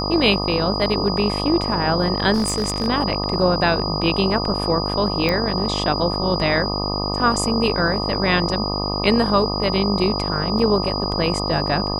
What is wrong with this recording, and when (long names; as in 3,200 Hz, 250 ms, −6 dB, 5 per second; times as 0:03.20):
mains buzz 50 Hz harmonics 25 −25 dBFS
whistle 4,900 Hz −26 dBFS
0:02.33–0:02.88: clipping −16 dBFS
0:05.29: click −7 dBFS
0:10.59: drop-out 3.5 ms